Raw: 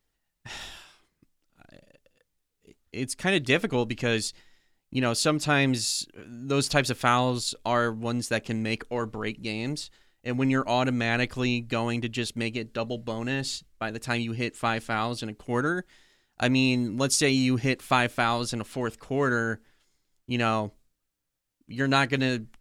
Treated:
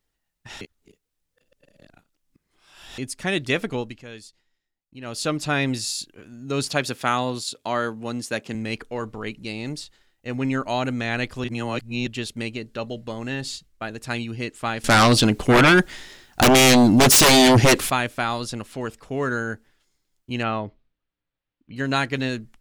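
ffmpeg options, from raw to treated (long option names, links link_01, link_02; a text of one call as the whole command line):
ffmpeg -i in.wav -filter_complex "[0:a]asettb=1/sr,asplit=3[link_01][link_02][link_03];[link_01]atrim=end=6.694[link_04];[link_02]atrim=start=6.69:end=8.55,asetpts=PTS-STARTPTS,afade=type=in:duration=0.004:curve=qsin,afade=type=out:start_time=1.856:duration=0.004:curve=qsin,highpass=130[link_05];[link_03]atrim=start=8.546[link_06];[link_04][link_05]acrossfade=duration=0.004:curve1=hsin:curve2=qsin[link_07];[link_07][link_06]acrossfade=duration=0.004:curve1=qsin:curve2=hsin,asettb=1/sr,asplit=3[link_08][link_09][link_10];[link_08]atrim=end=14.844[link_11];[link_09]atrim=start=14.84:end=17.9,asetpts=PTS-STARTPTS,afade=type=in:duration=0.004:curve=qsin,afade=type=out:start_time=3.056:duration=0.004:curve=qsin,aeval=exprs='0.316*sin(PI/2*5.62*val(0)/0.316)':channel_layout=same[link_12];[link_10]atrim=start=17.896[link_13];[link_11][link_12]acrossfade=duration=0.004:curve1=hsin:curve2=qsin[link_14];[link_14][link_13]acrossfade=duration=0.004:curve1=qsin:curve2=hsin,asettb=1/sr,asplit=3[link_15][link_16][link_17];[link_15]atrim=end=20.434[link_18];[link_16]atrim=start=20.43:end=21.76,asetpts=PTS-STARTPTS,afade=type=in:duration=0.004:curve=qsin,afade=type=out:start_time=1.326:duration=0.004:curve=qsin,lowpass=frequency=3700:width=0.5412,lowpass=frequency=3700:width=1.3066[link_19];[link_17]atrim=start=21.756[link_20];[link_18][link_19]acrossfade=duration=0.004:curve1=hsin:curve2=qsin[link_21];[link_21][link_20]acrossfade=duration=0.004:curve1=qsin:curve2=hsin,asplit=7[link_22][link_23][link_24][link_25][link_26][link_27][link_28];[link_22]atrim=end=0.612[link_29];[link_23]atrim=start=0.608:end=2.982,asetpts=PTS-STARTPTS,areverse[link_30];[link_24]atrim=start=2.978:end=4.03,asetpts=PTS-STARTPTS,afade=type=out:start_time=0.732:duration=0.32:silence=0.188365[link_31];[link_25]atrim=start=4.03:end=5,asetpts=PTS-STARTPTS,volume=-14.5dB[link_32];[link_26]atrim=start=5:end=11.442,asetpts=PTS-STARTPTS,afade=type=in:duration=0.32:silence=0.188365[link_33];[link_27]atrim=start=11.438:end=12.072,asetpts=PTS-STARTPTS,areverse[link_34];[link_28]atrim=start=12.068[link_35];[link_29][link_30]acrossfade=duration=0.004:curve1=hsin:curve2=hsin[link_36];[link_31][link_32][link_33]concat=n=3:v=0:a=1[link_37];[link_36][link_37]acrossfade=duration=0.004:curve1=hsin:curve2=hsin[link_38];[link_38][link_34]acrossfade=duration=0.004:curve1=hsin:curve2=hsin[link_39];[link_39][link_35]acrossfade=duration=0.004:curve1=hsin:curve2=hsin" out.wav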